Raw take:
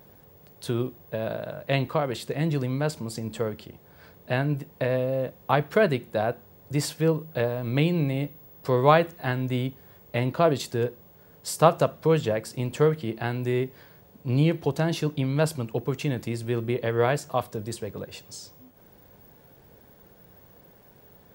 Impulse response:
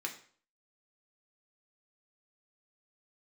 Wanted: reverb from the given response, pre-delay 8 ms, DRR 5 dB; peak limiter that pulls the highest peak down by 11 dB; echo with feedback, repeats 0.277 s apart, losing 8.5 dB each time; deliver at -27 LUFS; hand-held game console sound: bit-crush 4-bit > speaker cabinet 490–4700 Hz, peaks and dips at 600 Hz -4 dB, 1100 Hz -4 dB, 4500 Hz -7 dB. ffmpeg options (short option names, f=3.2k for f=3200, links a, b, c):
-filter_complex "[0:a]alimiter=limit=-15dB:level=0:latency=1,aecho=1:1:277|554|831|1108:0.376|0.143|0.0543|0.0206,asplit=2[a][b];[1:a]atrim=start_sample=2205,adelay=8[c];[b][c]afir=irnorm=-1:irlink=0,volume=-6.5dB[d];[a][d]amix=inputs=2:normalize=0,acrusher=bits=3:mix=0:aa=0.000001,highpass=490,equalizer=f=600:t=q:w=4:g=-4,equalizer=f=1.1k:t=q:w=4:g=-4,equalizer=f=4.5k:t=q:w=4:g=-7,lowpass=f=4.7k:w=0.5412,lowpass=f=4.7k:w=1.3066,volume=4dB"